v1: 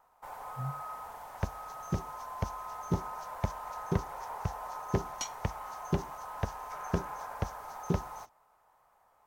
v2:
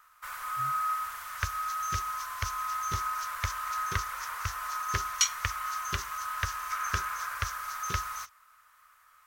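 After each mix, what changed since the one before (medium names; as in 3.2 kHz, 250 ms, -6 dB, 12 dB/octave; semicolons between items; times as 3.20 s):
master: add FFT filter 100 Hz 0 dB, 160 Hz -16 dB, 320 Hz -14 dB, 560 Hz -10 dB, 820 Hz -16 dB, 1.2 kHz +13 dB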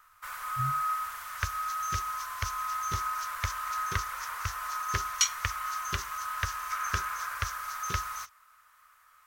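speech: add tilt EQ -4 dB/octave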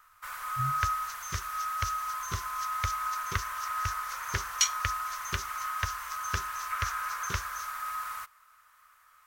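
second sound: entry -0.60 s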